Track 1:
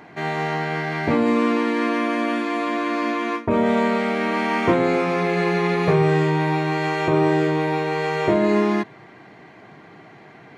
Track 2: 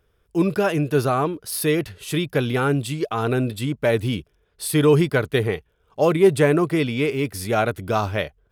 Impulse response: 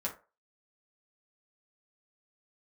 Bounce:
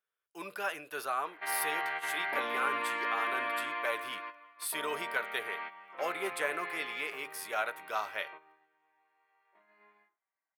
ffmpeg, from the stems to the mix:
-filter_complex "[0:a]lowpass=frequency=3600:width=0.5412,lowpass=frequency=3600:width=1.3066,adelay=1250,volume=-3.5dB,afade=type=out:start_time=3.59:duration=0.52:silence=0.375837,afade=type=out:start_time=6.8:duration=0.38:silence=0.421697,asplit=2[link_01][link_02];[link_02]volume=-14.5dB[link_03];[1:a]volume=-6dB,asplit=3[link_04][link_05][link_06];[link_05]volume=-13dB[link_07];[link_06]apad=whole_len=521308[link_08];[link_01][link_08]sidechaingate=range=-33dB:threshold=-45dB:ratio=16:detection=peak[link_09];[2:a]atrim=start_sample=2205[link_10];[link_03][link_07]amix=inputs=2:normalize=0[link_11];[link_11][link_10]afir=irnorm=-1:irlink=0[link_12];[link_09][link_04][link_12]amix=inputs=3:normalize=0,agate=range=-10dB:threshold=-48dB:ratio=16:detection=peak,highpass=1200,equalizer=frequency=5500:width_type=o:width=2:gain=-7.5"

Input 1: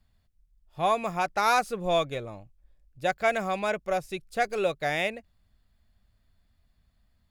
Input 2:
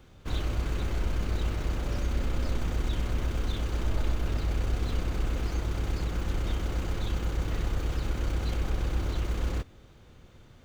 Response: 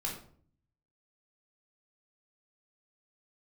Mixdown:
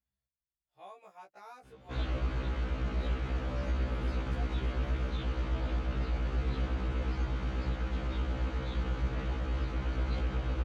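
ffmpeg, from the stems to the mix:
-filter_complex "[0:a]acrossover=split=320|1000[link_01][link_02][link_03];[link_01]acompressor=threshold=-55dB:ratio=4[link_04];[link_02]acompressor=threshold=-28dB:ratio=4[link_05];[link_03]acompressor=threshold=-38dB:ratio=4[link_06];[link_04][link_05][link_06]amix=inputs=3:normalize=0,volume=-18dB[link_07];[1:a]lowpass=3400,adelay=1650,volume=1dB[link_08];[link_07][link_08]amix=inputs=2:normalize=0,highpass=62,afftfilt=real='re*1.73*eq(mod(b,3),0)':imag='im*1.73*eq(mod(b,3),0)':win_size=2048:overlap=0.75"

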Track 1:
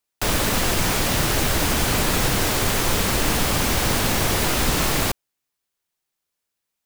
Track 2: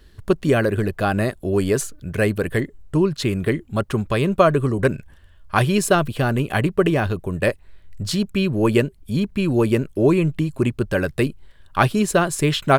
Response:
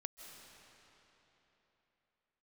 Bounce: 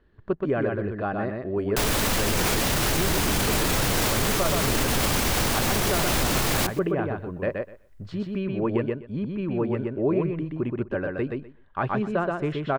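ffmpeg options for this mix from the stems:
-filter_complex "[0:a]adelay=1550,volume=1dB,asplit=2[link_01][link_02];[link_02]volume=-23.5dB[link_03];[1:a]lowpass=1600,lowshelf=frequency=120:gain=-9,volume=-6.5dB,asplit=2[link_04][link_05];[link_05]volume=-3.5dB[link_06];[link_03][link_06]amix=inputs=2:normalize=0,aecho=0:1:125|250|375:1|0.15|0.0225[link_07];[link_01][link_04][link_07]amix=inputs=3:normalize=0,alimiter=limit=-14dB:level=0:latency=1:release=24"

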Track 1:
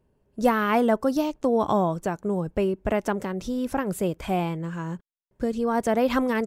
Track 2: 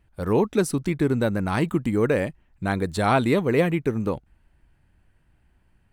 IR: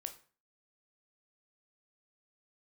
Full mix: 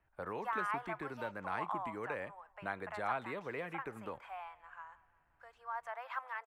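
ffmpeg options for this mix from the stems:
-filter_complex "[0:a]highpass=frequency=870:width=0.5412,highpass=frequency=870:width=1.3066,volume=-8.5dB,asplit=2[link_01][link_02];[link_02]volume=-20dB[link_03];[1:a]acrossover=split=160|2200[link_04][link_05][link_06];[link_04]acompressor=threshold=-43dB:ratio=4[link_07];[link_05]acompressor=threshold=-32dB:ratio=4[link_08];[link_06]acompressor=threshold=-38dB:ratio=4[link_09];[link_07][link_08][link_09]amix=inputs=3:normalize=0,volume=-3.5dB,asplit=2[link_10][link_11];[link_11]volume=-9.5dB[link_12];[2:a]atrim=start_sample=2205[link_13];[link_12][link_13]afir=irnorm=-1:irlink=0[link_14];[link_03]aecho=0:1:176|352|528|704|880|1056|1232|1408:1|0.53|0.281|0.149|0.0789|0.0418|0.0222|0.0117[link_15];[link_01][link_10][link_14][link_15]amix=inputs=4:normalize=0,acrossover=split=580 2100:gain=0.178 1 0.0794[link_16][link_17][link_18];[link_16][link_17][link_18]amix=inputs=3:normalize=0"

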